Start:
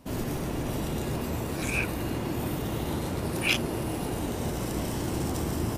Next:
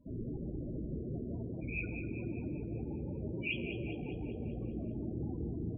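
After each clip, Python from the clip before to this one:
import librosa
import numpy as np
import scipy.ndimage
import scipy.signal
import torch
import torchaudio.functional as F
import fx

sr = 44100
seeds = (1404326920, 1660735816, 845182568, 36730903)

y = fx.spec_topn(x, sr, count=16)
y = fx.comb_fb(y, sr, f0_hz=57.0, decay_s=1.5, harmonics='all', damping=0.0, mix_pct=60)
y = fx.echo_feedback(y, sr, ms=198, feedback_pct=56, wet_db=-9)
y = y * librosa.db_to_amplitude(-1.5)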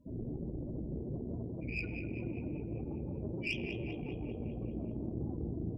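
y = fx.tube_stage(x, sr, drive_db=28.0, bias=0.6)
y = y * librosa.db_to_amplitude(3.0)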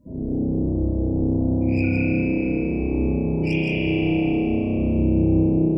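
y = fx.peak_eq(x, sr, hz=3000.0, db=-6.5, octaves=0.86)
y = y + 10.0 ** (-5.0 / 20.0) * np.pad(y, (int(167 * sr / 1000.0), 0))[:len(y)]
y = fx.rev_spring(y, sr, rt60_s=3.1, pass_ms=(31,), chirp_ms=55, drr_db=-9.0)
y = y * librosa.db_to_amplitude(6.5)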